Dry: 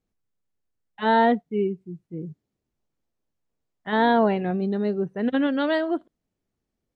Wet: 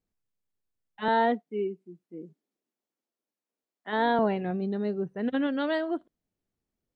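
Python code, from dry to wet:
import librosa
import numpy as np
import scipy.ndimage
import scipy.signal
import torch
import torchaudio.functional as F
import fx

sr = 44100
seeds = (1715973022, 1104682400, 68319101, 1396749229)

y = fx.highpass(x, sr, hz=230.0, slope=24, at=(1.08, 4.19))
y = y * librosa.db_to_amplitude(-5.0)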